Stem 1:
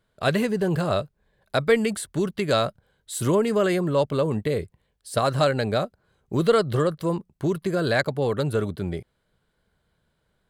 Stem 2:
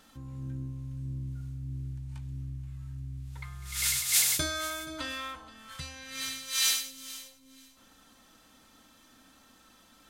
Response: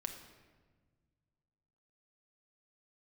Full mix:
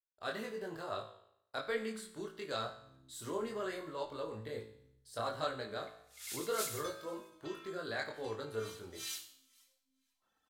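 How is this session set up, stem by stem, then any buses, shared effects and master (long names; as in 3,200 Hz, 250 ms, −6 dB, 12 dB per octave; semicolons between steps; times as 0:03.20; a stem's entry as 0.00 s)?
+3.0 dB, 0.00 s, no send, graphic EQ with 15 bands 160 Hz −10 dB, 630 Hz −3 dB, 2,500 Hz −6 dB, 10,000 Hz −8 dB; noise gate with hold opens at −52 dBFS; multi-voice chorus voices 4, 0.69 Hz, delay 23 ms, depth 4.3 ms
−3.0 dB, 2.45 s, no send, reverb reduction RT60 1.9 s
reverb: not used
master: low-shelf EQ 320 Hz −10.5 dB; tuned comb filter 55 Hz, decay 0.72 s, harmonics all, mix 70%; flanger 1.1 Hz, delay 7.7 ms, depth 4.9 ms, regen +89%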